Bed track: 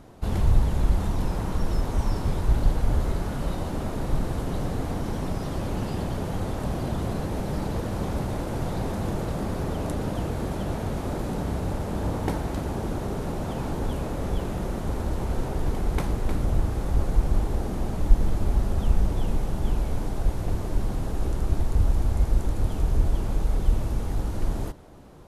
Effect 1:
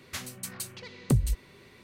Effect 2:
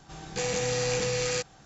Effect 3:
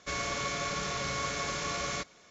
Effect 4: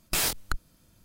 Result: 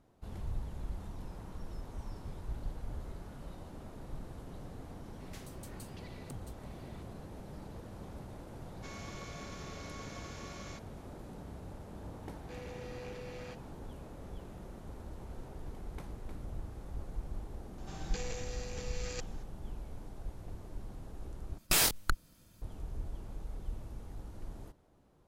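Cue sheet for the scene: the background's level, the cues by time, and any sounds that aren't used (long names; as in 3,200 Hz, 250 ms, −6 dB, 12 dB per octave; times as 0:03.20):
bed track −18.5 dB
0:05.20: mix in 1 −7 dB + downward compressor 2.5 to 1, threshold −46 dBFS
0:08.76: mix in 3 −15.5 dB
0:12.13: mix in 2 −17.5 dB + low-pass filter 3,000 Hz
0:17.78: mix in 2 −9.5 dB + compressor whose output falls as the input rises −32 dBFS, ratio −0.5
0:21.58: overwrite with 4 −0.5 dB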